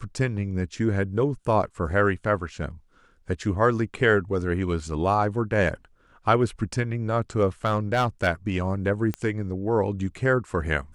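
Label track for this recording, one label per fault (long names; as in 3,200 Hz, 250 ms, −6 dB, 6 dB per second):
7.650000	8.280000	clipping −17 dBFS
9.140000	9.140000	click −15 dBFS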